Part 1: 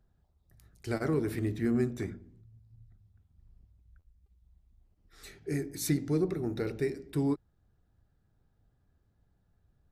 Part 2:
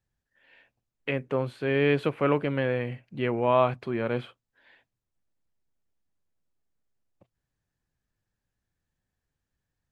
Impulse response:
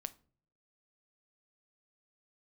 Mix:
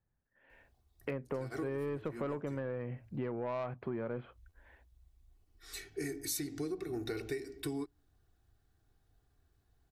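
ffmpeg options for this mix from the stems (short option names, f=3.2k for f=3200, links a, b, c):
-filter_complex "[0:a]tiltshelf=f=1.4k:g=-4.5,aecho=1:1:2.7:0.63,adelay=500,volume=0dB,asplit=2[a][b];[b]volume=-24dB[c];[1:a]lowpass=1.5k,asoftclip=type=tanh:threshold=-18.5dB,volume=0dB,asplit=2[d][e];[e]apad=whole_len=459454[f];[a][f]sidechaincompress=threshold=-38dB:ratio=8:attack=29:release=217[g];[2:a]atrim=start_sample=2205[h];[c][h]afir=irnorm=-1:irlink=0[i];[g][d][i]amix=inputs=3:normalize=0,acompressor=threshold=-34dB:ratio=12"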